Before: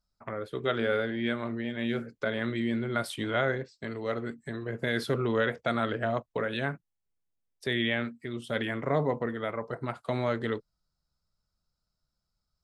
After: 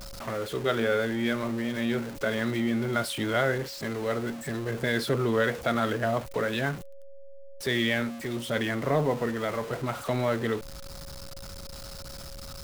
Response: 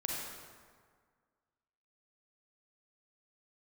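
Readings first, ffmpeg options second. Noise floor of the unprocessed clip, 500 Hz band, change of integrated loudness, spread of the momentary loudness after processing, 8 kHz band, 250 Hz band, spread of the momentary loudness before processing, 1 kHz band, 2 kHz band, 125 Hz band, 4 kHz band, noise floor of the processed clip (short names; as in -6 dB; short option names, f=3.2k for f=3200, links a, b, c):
-83 dBFS, +2.5 dB, +2.5 dB, 15 LU, +11.0 dB, +3.0 dB, 9 LU, +2.5 dB, +2.5 dB, +3.0 dB, +3.5 dB, -41 dBFS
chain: -af "aeval=exprs='val(0)+0.5*0.0168*sgn(val(0))':c=same,aeval=exprs='val(0)+0.00316*sin(2*PI*550*n/s)':c=same,volume=1dB"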